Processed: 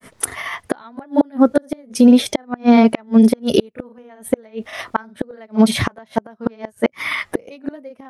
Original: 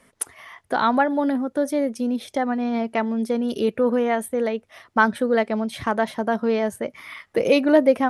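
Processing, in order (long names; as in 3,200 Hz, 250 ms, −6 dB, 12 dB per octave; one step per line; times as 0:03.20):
granular cloud 138 ms, grains 15 per second, spray 33 ms, pitch spread up and down by 0 semitones
gate with flip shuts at −16 dBFS, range −36 dB
boost into a limiter +19 dB
level −2 dB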